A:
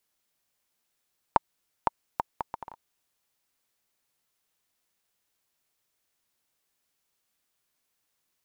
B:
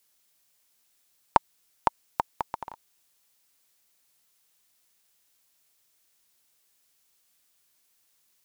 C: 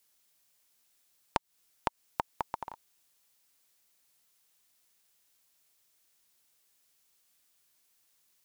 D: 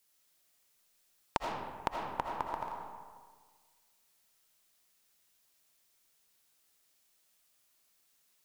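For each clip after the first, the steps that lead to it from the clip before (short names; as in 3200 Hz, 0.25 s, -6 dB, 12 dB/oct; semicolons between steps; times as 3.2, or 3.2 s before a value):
high shelf 2800 Hz +8 dB; gain +2.5 dB
compressor 12:1, threshold -24 dBFS, peak gain reduction 12 dB; gain -2 dB
digital reverb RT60 1.6 s, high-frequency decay 0.55×, pre-delay 40 ms, DRR -0.5 dB; gain -2.5 dB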